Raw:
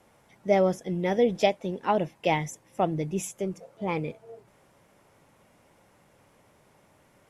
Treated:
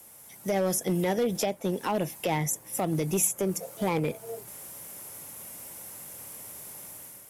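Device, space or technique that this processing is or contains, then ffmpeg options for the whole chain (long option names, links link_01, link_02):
FM broadcast chain: -filter_complex "[0:a]highpass=41,dynaudnorm=framelen=180:gausssize=5:maxgain=8dB,acrossover=split=340|2000[link_01][link_02][link_03];[link_01]acompressor=threshold=-26dB:ratio=4[link_04];[link_02]acompressor=threshold=-22dB:ratio=4[link_05];[link_03]acompressor=threshold=-46dB:ratio=4[link_06];[link_04][link_05][link_06]amix=inputs=3:normalize=0,aemphasis=mode=production:type=50fm,alimiter=limit=-17dB:level=0:latency=1:release=84,asoftclip=type=hard:threshold=-20dB,lowpass=frequency=15000:width=0.5412,lowpass=frequency=15000:width=1.3066,aemphasis=mode=production:type=50fm"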